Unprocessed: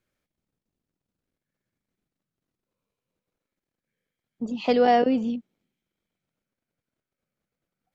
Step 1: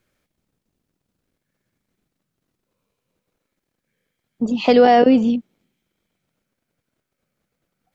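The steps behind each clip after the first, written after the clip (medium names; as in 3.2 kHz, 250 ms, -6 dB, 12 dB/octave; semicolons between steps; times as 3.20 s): loudness maximiser +12 dB; trim -2.5 dB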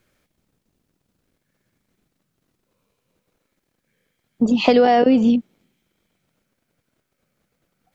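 compression 6:1, threshold -15 dBFS, peak gain reduction 7.5 dB; trim +4.5 dB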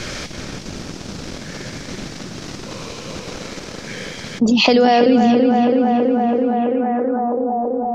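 tape echo 330 ms, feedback 72%, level -5 dB, low-pass 2.4 kHz; low-pass sweep 5.6 kHz -> 890 Hz, 6.34–7.42 s; level flattener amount 70%; trim -1 dB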